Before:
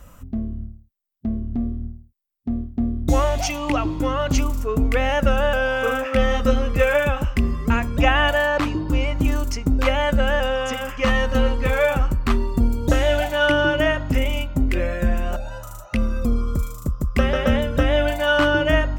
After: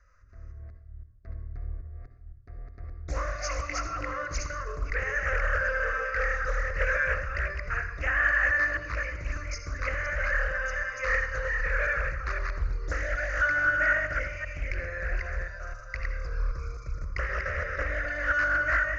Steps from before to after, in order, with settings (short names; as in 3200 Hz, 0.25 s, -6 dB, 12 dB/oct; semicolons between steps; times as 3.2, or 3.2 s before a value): reverse delay 0.258 s, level -2 dB; bell 270 Hz -9.5 dB 3 oct; AGC gain up to 6 dB; rippled Chebyshev low-pass 6600 Hz, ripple 9 dB; fixed phaser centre 860 Hz, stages 6; de-hum 45.13 Hz, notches 22; on a send at -7.5 dB: reverb RT60 0.75 s, pre-delay 55 ms; on the sum: Doppler distortion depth 0.61 ms; gain -5 dB